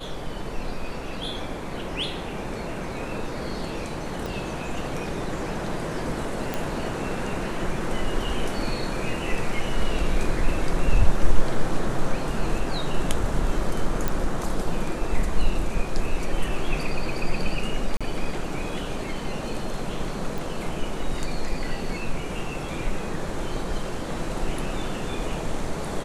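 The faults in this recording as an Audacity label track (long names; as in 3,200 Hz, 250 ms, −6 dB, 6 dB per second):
4.260000	4.260000	click
6.540000	6.540000	click −12 dBFS
14.080000	14.080000	click
17.970000	18.010000	drop-out 36 ms
20.380000	20.380000	click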